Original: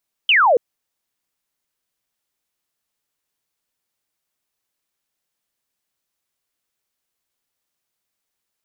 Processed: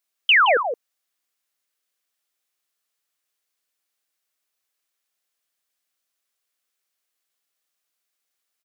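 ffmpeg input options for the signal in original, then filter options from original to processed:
-f lavfi -i "aevalsrc='0.299*clip(t/0.002,0,1)*clip((0.28-t)/0.002,0,1)*sin(2*PI*3200*0.28/log(440/3200)*(exp(log(440/3200)*t/0.28)-1))':duration=0.28:sample_rate=44100"
-filter_complex "[0:a]highpass=frequency=650:poles=1,bandreject=frequency=920:width=7.1,asplit=2[link_01][link_02];[link_02]adelay=169.1,volume=-7dB,highshelf=frequency=4000:gain=-3.8[link_03];[link_01][link_03]amix=inputs=2:normalize=0"

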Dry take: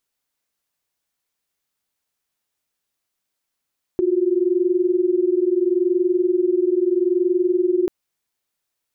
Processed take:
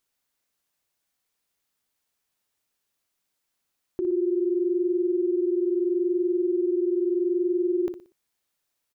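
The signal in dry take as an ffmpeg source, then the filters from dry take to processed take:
-f lavfi -i "aevalsrc='0.119*(sin(2*PI*349.23*t)+sin(2*PI*369.99*t))':duration=3.89:sample_rate=44100"
-af "alimiter=limit=-21.5dB:level=0:latency=1:release=40,aecho=1:1:60|120|180|240:0.335|0.117|0.041|0.0144"

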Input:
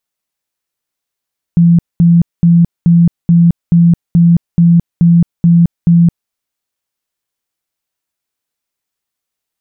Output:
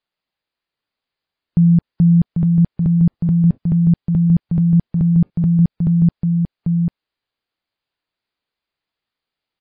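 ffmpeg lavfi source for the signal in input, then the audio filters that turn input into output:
-f lavfi -i "aevalsrc='0.668*sin(2*PI*170*mod(t,0.43))*lt(mod(t,0.43),37/170)':duration=4.73:sample_rate=44100"
-filter_complex "[0:a]alimiter=limit=-7dB:level=0:latency=1,asplit=2[link_01][link_02];[link_02]aecho=0:1:793:0.531[link_03];[link_01][link_03]amix=inputs=2:normalize=0" -ar 11025 -c:a libmp3lame -b:a 24k

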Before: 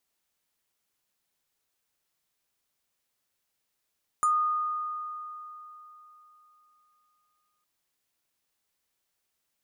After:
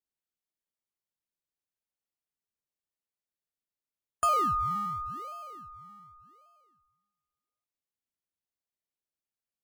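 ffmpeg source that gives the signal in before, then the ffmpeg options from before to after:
-f lavfi -i "aevalsrc='0.1*pow(10,-3*t/3.59)*sin(2*PI*1230*t+0.54*pow(10,-3*t/0.15)*sin(2*PI*6.74*1230*t))':duration=3.41:sample_rate=44100"
-filter_complex "[0:a]afftdn=noise_reduction=19:noise_floor=-47,asplit=2[link_01][link_02];[link_02]acrusher=samples=33:mix=1:aa=0.000001:lfo=1:lforange=19.8:lforate=0.88,volume=-10dB[link_03];[link_01][link_03]amix=inputs=2:normalize=0"

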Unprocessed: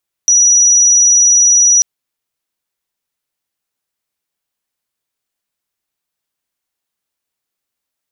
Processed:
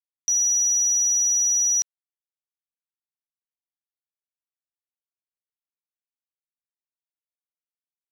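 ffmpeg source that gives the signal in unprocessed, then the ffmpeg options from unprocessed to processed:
-f lavfi -i "aevalsrc='0.531*sin(2*PI*5840*t)':duration=1.54:sample_rate=44100"
-af "highshelf=frequency=5100:gain=-6.5,alimiter=limit=-17.5dB:level=0:latency=1,acrusher=bits=6:mix=0:aa=0.000001"

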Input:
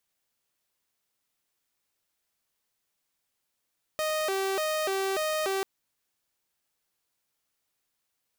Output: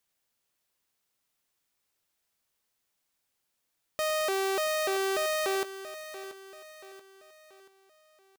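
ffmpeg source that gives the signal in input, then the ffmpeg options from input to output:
-f lavfi -i "aevalsrc='0.0631*(2*mod((504*t+117/1.7*(0.5-abs(mod(1.7*t,1)-0.5))),1)-1)':duration=1.64:sample_rate=44100"
-af "aecho=1:1:682|1364|2046|2728:0.224|0.0985|0.0433|0.0191"

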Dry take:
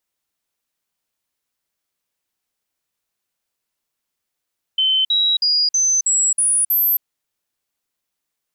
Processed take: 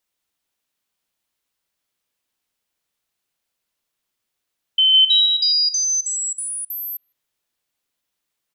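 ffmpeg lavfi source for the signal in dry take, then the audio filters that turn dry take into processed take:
-f lavfi -i "aevalsrc='0.211*clip(min(mod(t,0.32),0.27-mod(t,0.32))/0.005,0,1)*sin(2*PI*3070*pow(2,floor(t/0.32)/3)*mod(t,0.32))':duration=2.24:sample_rate=44100"
-filter_complex "[0:a]equalizer=frequency=3300:width=1.5:gain=2.5,acrossover=split=5600[link_01][link_02];[link_01]asplit=2[link_03][link_04];[link_04]adelay=156,lowpass=frequency=3700:poles=1,volume=-6dB,asplit=2[link_05][link_06];[link_06]adelay=156,lowpass=frequency=3700:poles=1,volume=0.31,asplit=2[link_07][link_08];[link_08]adelay=156,lowpass=frequency=3700:poles=1,volume=0.31,asplit=2[link_09][link_10];[link_10]adelay=156,lowpass=frequency=3700:poles=1,volume=0.31[link_11];[link_03][link_05][link_07][link_09][link_11]amix=inputs=5:normalize=0[link_12];[link_02]acompressor=threshold=-29dB:ratio=6[link_13];[link_12][link_13]amix=inputs=2:normalize=0"

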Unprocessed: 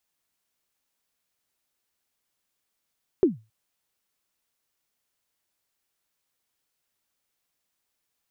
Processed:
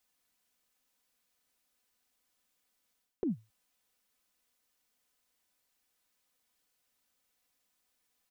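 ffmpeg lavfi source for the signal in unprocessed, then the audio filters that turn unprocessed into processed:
-f lavfi -i "aevalsrc='0.282*pow(10,-3*t/0.27)*sin(2*PI*(410*0.147/log(110/410)*(exp(log(110/410)*min(t,0.147)/0.147)-1)+110*max(t-0.147,0)))':duration=0.27:sample_rate=44100"
-af "aecho=1:1:4:0.54,areverse,acompressor=threshold=-32dB:ratio=6,areverse"

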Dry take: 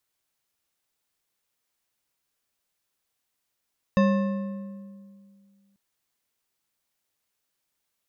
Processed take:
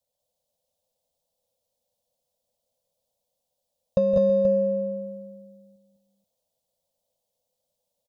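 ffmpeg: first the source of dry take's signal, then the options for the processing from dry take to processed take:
-f lavfi -i "aevalsrc='0.15*pow(10,-3*t/2.25)*sin(2*PI*198*t)+0.0841*pow(10,-3*t/1.66)*sin(2*PI*545.9*t)+0.0473*pow(10,-3*t/1.356)*sin(2*PI*1070*t)+0.0266*pow(10,-3*t/1.166)*sin(2*PI*1768.7*t)+0.015*pow(10,-3*t/1.034)*sin(2*PI*2641.3*t)+0.00841*pow(10,-3*t/0.936)*sin(2*PI*3690.7*t)+0.00473*pow(10,-3*t/0.859)*sin(2*PI*4912.4*t)+0.00266*pow(10,-3*t/0.796)*sin(2*PI*6310.3*t)':duration=1.79:sample_rate=44100"
-af "firequalizer=gain_entry='entry(240,0);entry(350,-23);entry(510,15);entry(1400,-27);entry(3400,-5)':delay=0.05:min_phase=1,acompressor=threshold=-19dB:ratio=6,aecho=1:1:165|191|203|326|480:0.266|0.501|0.631|0.133|0.376"

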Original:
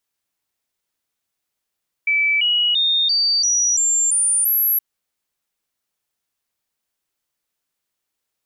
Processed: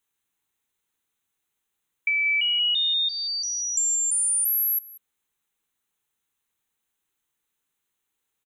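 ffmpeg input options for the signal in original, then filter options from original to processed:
-f lavfi -i "aevalsrc='0.188*clip(min(mod(t,0.34),0.34-mod(t,0.34))/0.005,0,1)*sin(2*PI*2310*pow(2,floor(t/0.34)/3)*mod(t,0.34))':duration=2.72:sample_rate=44100"
-filter_complex "[0:a]superequalizer=8b=0.398:14b=0.282,acompressor=threshold=-22dB:ratio=6,asplit=2[link_01][link_02];[link_02]adelay=186.6,volume=-17dB,highshelf=frequency=4000:gain=-4.2[link_03];[link_01][link_03]amix=inputs=2:normalize=0"

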